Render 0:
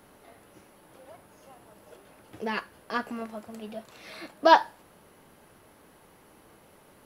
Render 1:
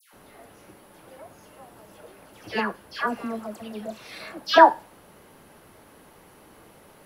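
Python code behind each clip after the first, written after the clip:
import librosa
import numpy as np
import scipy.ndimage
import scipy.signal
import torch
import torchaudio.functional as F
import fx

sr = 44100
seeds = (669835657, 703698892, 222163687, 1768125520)

y = fx.dispersion(x, sr, late='lows', ms=135.0, hz=1600.0)
y = F.gain(torch.from_numpy(y), 4.5).numpy()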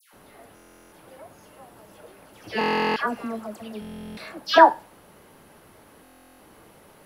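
y = fx.buffer_glitch(x, sr, at_s=(0.55, 2.59, 3.8, 6.03), block=1024, repeats=15)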